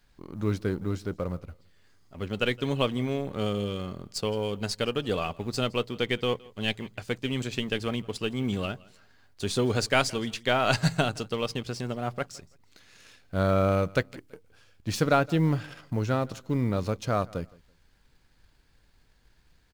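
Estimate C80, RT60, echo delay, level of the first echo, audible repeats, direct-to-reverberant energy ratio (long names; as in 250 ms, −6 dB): no reverb audible, no reverb audible, 166 ms, −23.5 dB, 1, no reverb audible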